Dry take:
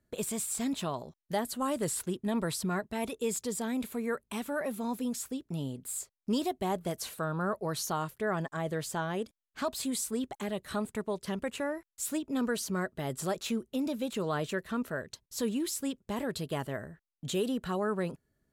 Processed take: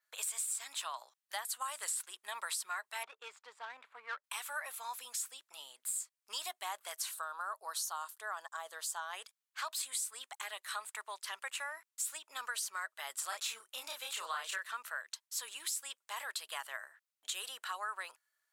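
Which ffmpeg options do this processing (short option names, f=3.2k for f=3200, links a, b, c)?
-filter_complex "[0:a]asettb=1/sr,asplit=3[a][b][c];[a]atrim=end=3.034[d];[b]atrim=start=3.03:end=4.24,asetpts=PTS-STARTPTS,afade=t=in:d=0.004:c=qsin,afade=t=out:st=1.206:d=0.004:c=qsin,adynamicsmooth=sensitivity=3:basefreq=980[e];[c]atrim=start=4.236[f];[d][e]acrossfade=d=0.004:c1=hsin:c2=qsin[g];[g][f]acrossfade=d=0.004:c1=qsin:c2=hsin,asettb=1/sr,asplit=3[h][i][j];[h]atrim=end=7.114[k];[i]atrim=start=7.11:end=9.13,asetpts=PTS-STARTPTS,afade=t=in:d=0.004:c=qsin,afade=t=out:st=2.016:d=0.004:c=qsin,equalizer=f=2.2k:w=1.6:g=-12[l];[j]atrim=start=9.126[m];[k][l]acrossfade=d=0.004:c1=hsin:c2=qsin[n];[n][m]acrossfade=d=0.004:c1=qsin:c2=hsin,asettb=1/sr,asplit=3[o][p][q];[o]atrim=end=13.294[r];[p]atrim=start=13.29:end=14.68,asetpts=PTS-STARTPTS,afade=t=in:d=0.004:c=qsin,afade=t=out:st=1.386:d=0.004:c=qsin,asplit=2[s][t];[t]adelay=31,volume=-2dB[u];[s][u]amix=inputs=2:normalize=0,atrim=end_sample=61299[v];[q]atrim=start=14.676[w];[r][v]acrossfade=d=0.004:c1=hsin:c2=qsin[x];[x][w]acrossfade=d=0.004:c1=qsin:c2=hsin,highpass=f=1k:w=0.5412,highpass=f=1k:w=1.3066,adynamicequalizer=threshold=0.00224:dfrequency=8500:dqfactor=2.4:tfrequency=8500:tqfactor=2.4:attack=5:release=100:ratio=0.375:range=2.5:mode=boostabove:tftype=bell,acompressor=threshold=-38dB:ratio=4,volume=2.5dB"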